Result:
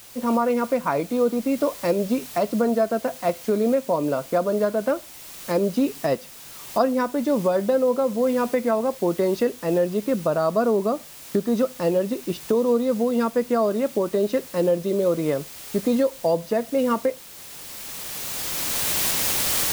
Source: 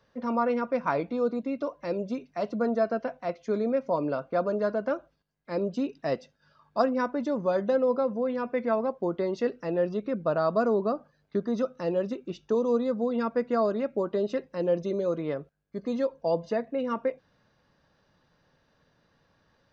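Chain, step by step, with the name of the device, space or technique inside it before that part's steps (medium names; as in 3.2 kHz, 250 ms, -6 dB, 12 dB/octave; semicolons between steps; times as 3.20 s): cheap recorder with automatic gain (white noise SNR 21 dB; recorder AGC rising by 12 dB/s); peaking EQ 1.5 kHz -2.5 dB; trim +4 dB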